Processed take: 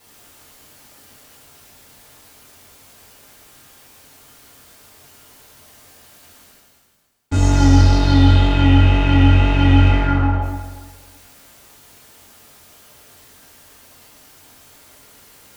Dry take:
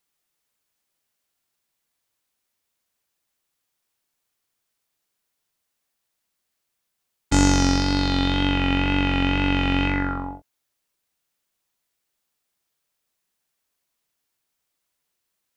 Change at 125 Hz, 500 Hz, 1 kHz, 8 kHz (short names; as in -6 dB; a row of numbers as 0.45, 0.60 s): +12.5, +5.0, +4.0, -2.0 dB